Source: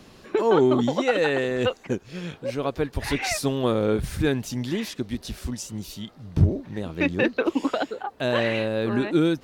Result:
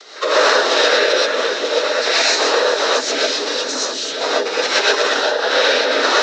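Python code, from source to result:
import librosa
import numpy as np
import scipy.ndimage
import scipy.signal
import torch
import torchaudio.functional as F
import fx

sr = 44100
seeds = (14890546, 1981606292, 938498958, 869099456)

y = fx.reverse_delay(x, sr, ms=264, wet_db=-7)
y = fx.peak_eq(y, sr, hz=800.0, db=-5.5, octaves=2.4)
y = fx.leveller(y, sr, passes=3)
y = (np.mod(10.0 ** (11.5 / 20.0) * y + 1.0, 2.0) - 1.0) / 10.0 ** (11.5 / 20.0)
y = fx.noise_vocoder(y, sr, seeds[0], bands=12)
y = fx.stretch_vocoder_free(y, sr, factor=0.66)
y = fx.cabinet(y, sr, low_hz=450.0, low_slope=24, high_hz=6200.0, hz=(470.0, 780.0, 1500.0, 2700.0, 4000.0, 5900.0), db=(5, -3, 6, -3, 7, 4))
y = y + 10.0 ** (-12.0 / 20.0) * np.pad(y, (int(934 * sr / 1000.0), 0))[:len(y)]
y = fx.rev_gated(y, sr, seeds[1], gate_ms=150, shape='rising', drr_db=-6.5)
y = fx.band_squash(y, sr, depth_pct=40)
y = F.gain(torch.from_numpy(y), -1.0).numpy()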